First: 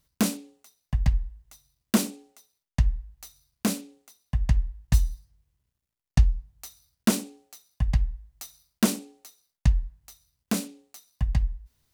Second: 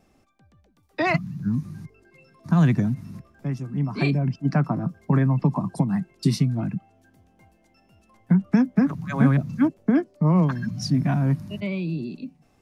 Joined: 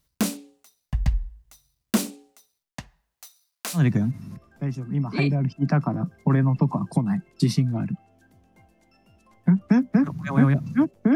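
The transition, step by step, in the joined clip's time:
first
2.71–3.83 HPF 260 Hz -> 1000 Hz
3.78 switch to second from 2.61 s, crossfade 0.10 s

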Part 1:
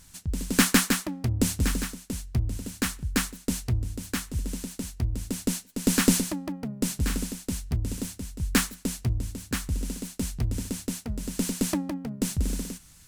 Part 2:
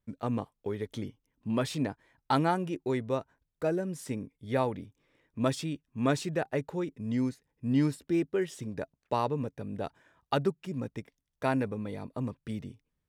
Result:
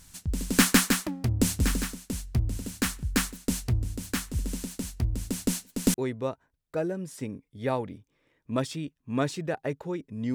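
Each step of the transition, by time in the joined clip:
part 1
5.94 switch to part 2 from 2.82 s

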